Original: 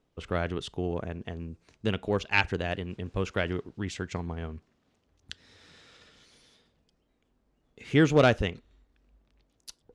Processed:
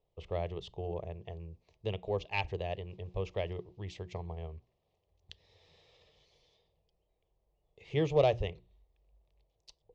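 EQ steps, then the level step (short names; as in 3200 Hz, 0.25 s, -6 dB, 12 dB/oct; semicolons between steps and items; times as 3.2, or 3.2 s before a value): air absorption 170 m; notches 60/120/180/240/300/360 Hz; fixed phaser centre 610 Hz, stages 4; -2.5 dB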